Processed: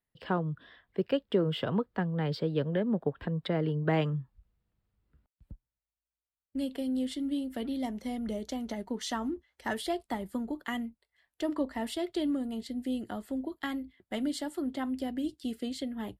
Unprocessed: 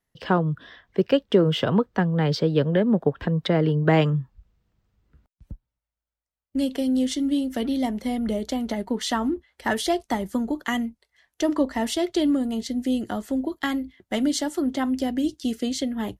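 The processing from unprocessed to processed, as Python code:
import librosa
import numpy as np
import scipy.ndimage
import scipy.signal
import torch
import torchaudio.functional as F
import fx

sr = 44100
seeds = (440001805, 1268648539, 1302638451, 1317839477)

y = fx.peak_eq(x, sr, hz=6100.0, db=fx.steps((0.0, -14.0), (7.83, 2.5), (9.77, -12.5)), octaves=0.3)
y = F.gain(torch.from_numpy(y), -9.0).numpy()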